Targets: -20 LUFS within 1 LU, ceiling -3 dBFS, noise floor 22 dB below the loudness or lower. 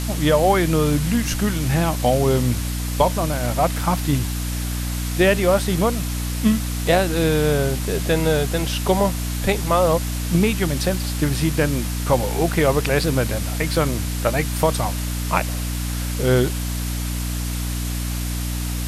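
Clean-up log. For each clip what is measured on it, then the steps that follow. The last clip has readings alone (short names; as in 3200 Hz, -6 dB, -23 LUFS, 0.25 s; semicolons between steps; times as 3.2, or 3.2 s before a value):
hum 60 Hz; harmonics up to 300 Hz; hum level -23 dBFS; noise floor -25 dBFS; noise floor target -43 dBFS; loudness -21.0 LUFS; peak -2.5 dBFS; loudness target -20.0 LUFS
-> notches 60/120/180/240/300 Hz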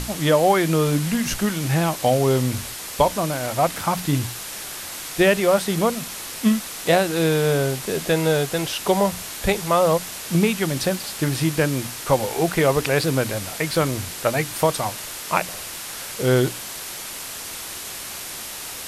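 hum none; noise floor -34 dBFS; noise floor target -44 dBFS
-> denoiser 10 dB, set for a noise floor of -34 dBFS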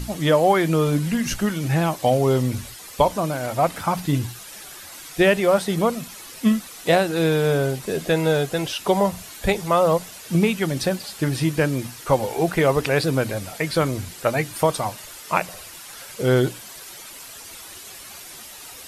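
noise floor -40 dBFS; noise floor target -44 dBFS
-> denoiser 6 dB, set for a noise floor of -40 dBFS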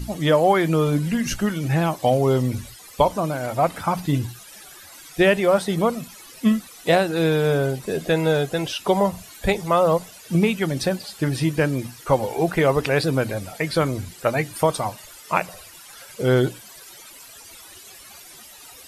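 noise floor -44 dBFS; loudness -22.0 LUFS; peak -2.5 dBFS; loudness target -20.0 LUFS
-> gain +2 dB; limiter -3 dBFS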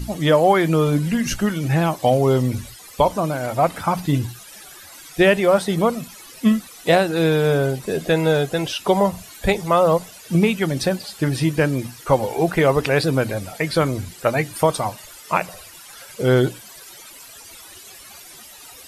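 loudness -20.0 LUFS; peak -3.0 dBFS; noise floor -42 dBFS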